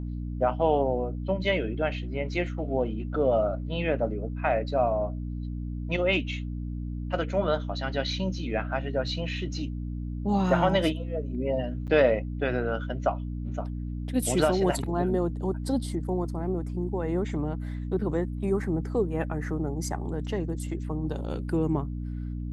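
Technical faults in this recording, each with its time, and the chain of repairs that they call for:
hum 60 Hz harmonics 5 -33 dBFS
11.87–11.88 gap 8.2 ms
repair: de-hum 60 Hz, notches 5; interpolate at 11.87, 8.2 ms

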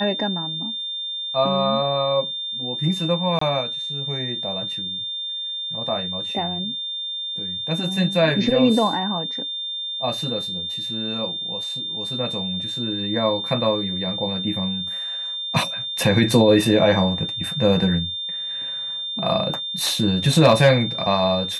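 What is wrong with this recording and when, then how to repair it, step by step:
tone 3600 Hz -26 dBFS
3.39–3.41 gap 24 ms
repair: notch 3600 Hz, Q 30; interpolate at 3.39, 24 ms

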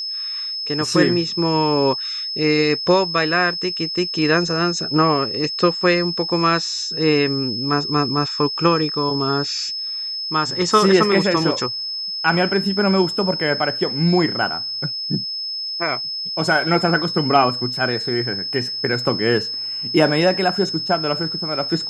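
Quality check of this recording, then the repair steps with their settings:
tone 5200 Hz -24 dBFS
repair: notch 5200 Hz, Q 30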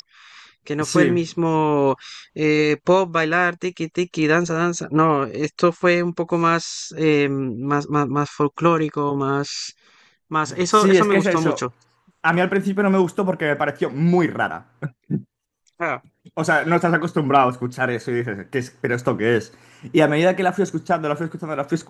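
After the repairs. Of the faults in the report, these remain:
none

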